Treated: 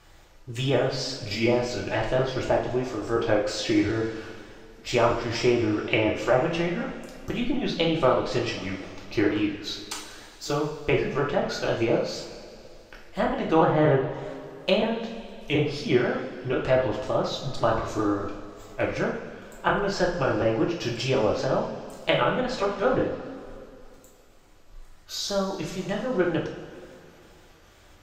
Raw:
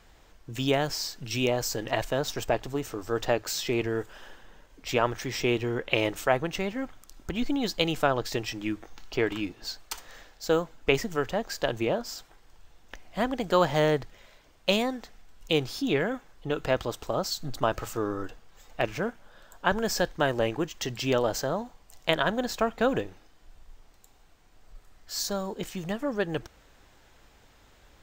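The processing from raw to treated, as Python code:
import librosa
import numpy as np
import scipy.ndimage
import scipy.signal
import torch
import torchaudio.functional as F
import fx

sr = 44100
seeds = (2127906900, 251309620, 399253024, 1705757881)

y = fx.pitch_trill(x, sr, semitones=-2.0, every_ms=243)
y = fx.env_lowpass_down(y, sr, base_hz=1700.0, full_db=-22.0)
y = fx.rev_double_slope(y, sr, seeds[0], early_s=0.48, late_s=2.6, knee_db=-15, drr_db=-2.5)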